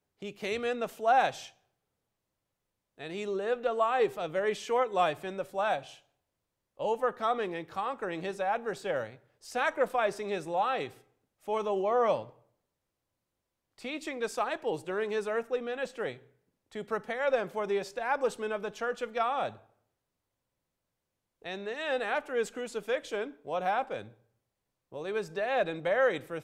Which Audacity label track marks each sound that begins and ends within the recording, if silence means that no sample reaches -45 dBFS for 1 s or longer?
2.990000	12.290000	sound
13.780000	19.570000	sound